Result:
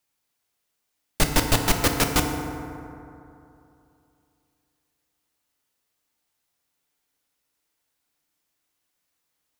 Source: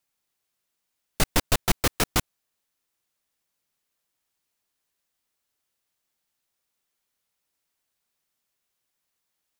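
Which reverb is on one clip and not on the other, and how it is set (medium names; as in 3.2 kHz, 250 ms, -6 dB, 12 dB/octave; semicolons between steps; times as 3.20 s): FDN reverb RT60 2.8 s, high-frequency decay 0.4×, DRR 3 dB; trim +1.5 dB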